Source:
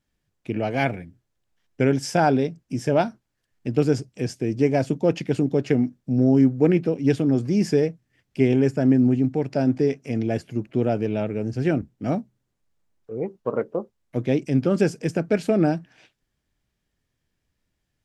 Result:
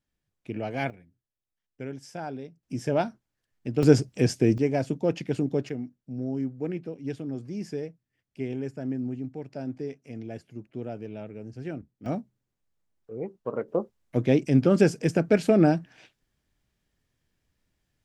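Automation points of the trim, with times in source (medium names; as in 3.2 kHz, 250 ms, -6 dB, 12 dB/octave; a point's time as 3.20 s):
-7 dB
from 0.90 s -17 dB
from 2.63 s -5 dB
from 3.83 s +4 dB
from 4.58 s -5 dB
from 5.69 s -13.5 dB
from 12.06 s -6 dB
from 13.68 s +0.5 dB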